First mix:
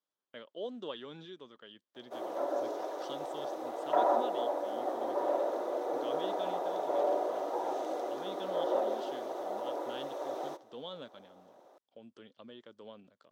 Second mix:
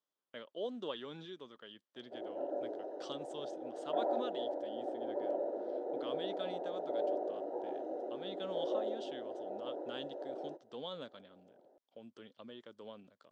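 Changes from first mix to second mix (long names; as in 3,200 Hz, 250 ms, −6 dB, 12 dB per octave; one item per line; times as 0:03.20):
background: add moving average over 39 samples
reverb: off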